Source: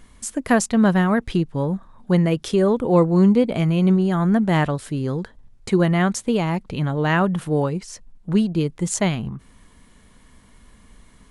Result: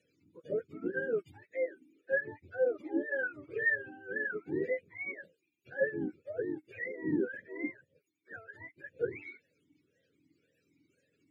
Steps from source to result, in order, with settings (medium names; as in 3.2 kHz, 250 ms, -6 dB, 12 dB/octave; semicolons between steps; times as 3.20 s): spectrum inverted on a logarithmic axis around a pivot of 540 Hz; FFT filter 560 Hz 0 dB, 1.1 kHz -28 dB, 1.8 kHz +1 dB; talking filter e-u 1.9 Hz; trim -1 dB